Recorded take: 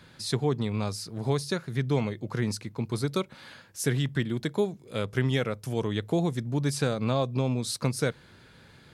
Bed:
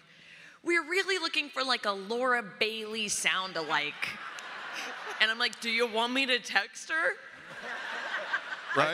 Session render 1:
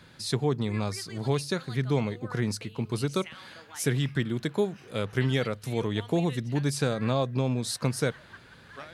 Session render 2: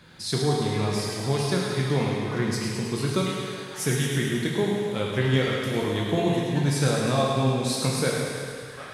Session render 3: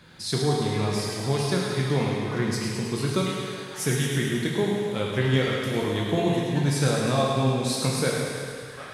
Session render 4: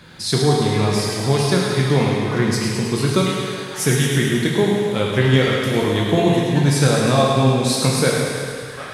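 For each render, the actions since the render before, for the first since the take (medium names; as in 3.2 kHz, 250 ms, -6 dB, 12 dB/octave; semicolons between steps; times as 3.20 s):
add bed -18 dB
thinning echo 106 ms, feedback 70%, high-pass 380 Hz, level -6.5 dB; plate-style reverb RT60 1.7 s, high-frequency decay 1×, DRR -2 dB
no audible change
trim +7.5 dB; peak limiter -3 dBFS, peak gain reduction 1.5 dB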